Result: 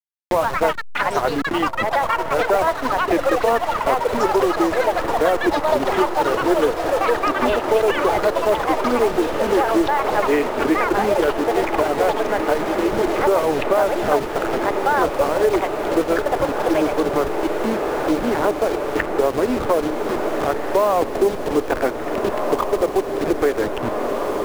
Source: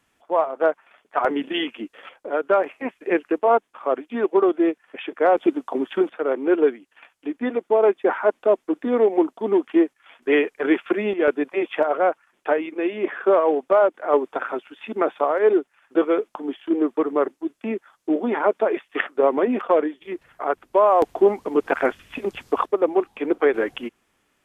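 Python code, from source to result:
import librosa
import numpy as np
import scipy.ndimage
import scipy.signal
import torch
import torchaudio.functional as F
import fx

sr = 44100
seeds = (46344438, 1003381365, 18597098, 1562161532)

y = fx.delta_hold(x, sr, step_db=-22.5)
y = fx.high_shelf(y, sr, hz=3300.0, db=-8.0)
y = fx.echo_pitch(y, sr, ms=187, semitones=6, count=3, db_per_echo=-3.0)
y = fx.echo_diffused(y, sr, ms=1772, feedback_pct=75, wet_db=-10.0)
y = fx.band_squash(y, sr, depth_pct=70)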